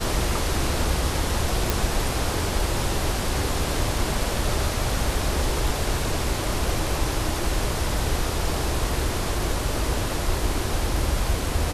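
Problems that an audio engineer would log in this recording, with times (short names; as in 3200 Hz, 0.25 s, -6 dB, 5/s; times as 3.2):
1.7 pop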